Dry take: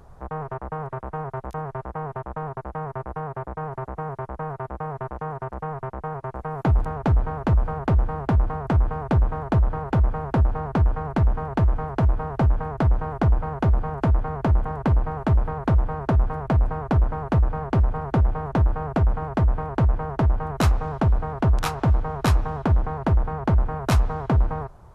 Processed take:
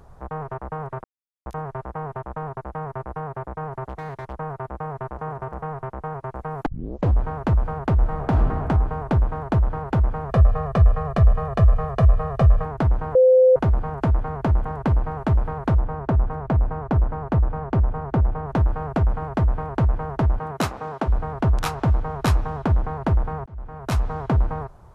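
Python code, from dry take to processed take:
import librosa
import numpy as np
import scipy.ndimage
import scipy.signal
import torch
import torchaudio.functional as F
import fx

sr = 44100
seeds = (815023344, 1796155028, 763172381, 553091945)

y = fx.clip_hard(x, sr, threshold_db=-26.0, at=(3.88, 4.33), fade=0.02)
y = fx.echo_throw(y, sr, start_s=4.91, length_s=0.46, ms=260, feedback_pct=25, wet_db=-13.5)
y = fx.reverb_throw(y, sr, start_s=7.98, length_s=0.66, rt60_s=1.6, drr_db=3.0)
y = fx.comb(y, sr, ms=1.7, depth=0.87, at=(10.29, 12.65))
y = fx.high_shelf(y, sr, hz=2600.0, db=-9.0, at=(15.75, 18.49))
y = fx.highpass(y, sr, hz=fx.line((20.38, 120.0), (21.07, 260.0)), slope=12, at=(20.38, 21.07), fade=0.02)
y = fx.edit(y, sr, fx.silence(start_s=1.04, length_s=0.42),
    fx.tape_start(start_s=6.66, length_s=0.55),
    fx.bleep(start_s=13.15, length_s=0.41, hz=514.0, db=-10.0),
    fx.fade_in_span(start_s=23.46, length_s=0.71), tone=tone)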